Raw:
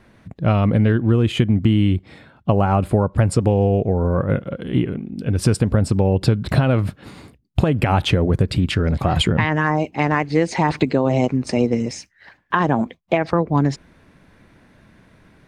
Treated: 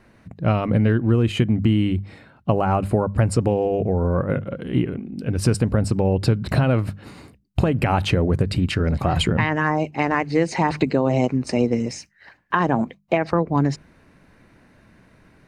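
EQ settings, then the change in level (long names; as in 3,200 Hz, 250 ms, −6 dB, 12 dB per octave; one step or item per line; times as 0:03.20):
mains-hum notches 50/100/150/200 Hz
notch filter 3,400 Hz, Q 9.3
−1.5 dB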